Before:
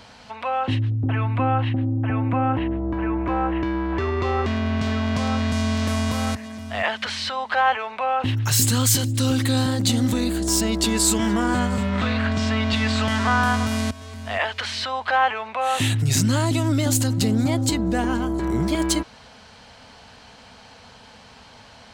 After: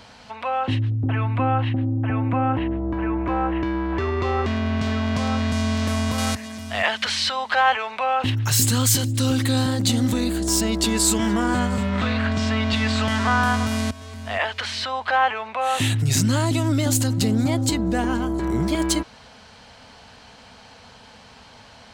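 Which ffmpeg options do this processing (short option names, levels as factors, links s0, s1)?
-filter_complex "[0:a]asettb=1/sr,asplit=3[s0][s1][s2];[s0]atrim=end=6.184[s3];[s1]atrim=start=6.18:end=8.3,asetpts=PTS-STARTPTS,afade=t=in:d=0.004:c=qsin,afade=t=out:st=2.116:d=0.004:c=qsin,highshelf=f=2600:g=7.5[s4];[s2]atrim=start=8.296[s5];[s3][s4]acrossfade=d=0.004:c1=hsin:c2=qsin[s6];[s6][s5]acrossfade=d=0.004:c1=qsin:c2=hsin"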